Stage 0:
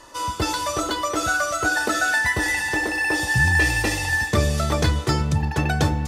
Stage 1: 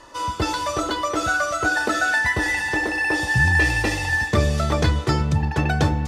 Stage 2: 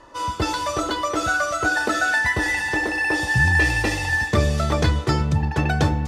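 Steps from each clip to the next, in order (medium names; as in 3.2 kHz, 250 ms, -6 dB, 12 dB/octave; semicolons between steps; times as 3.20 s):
treble shelf 7.6 kHz -11.5 dB; trim +1 dB
tape noise reduction on one side only decoder only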